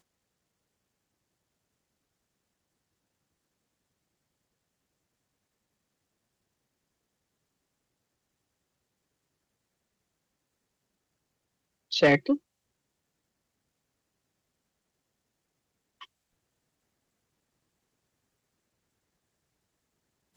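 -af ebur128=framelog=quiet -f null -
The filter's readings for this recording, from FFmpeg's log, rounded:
Integrated loudness:
  I:         -24.8 LUFS
  Threshold: -36.6 LUFS
Loudness range:
  LRA:         9.0 LU
  Threshold: -53.8 LUFS
  LRA low:   -39.5 LUFS
  LRA high:  -30.5 LUFS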